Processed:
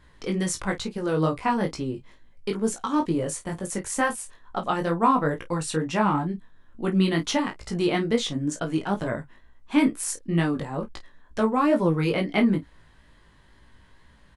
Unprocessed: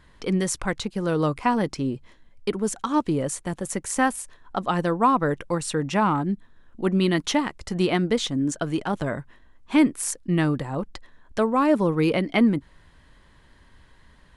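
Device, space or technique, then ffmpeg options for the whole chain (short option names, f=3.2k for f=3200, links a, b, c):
double-tracked vocal: -filter_complex "[0:a]asplit=2[a][b];[b]adelay=31,volume=-11.5dB[c];[a][c]amix=inputs=2:normalize=0,flanger=delay=17:depth=3.6:speed=2.2,volume=1.5dB"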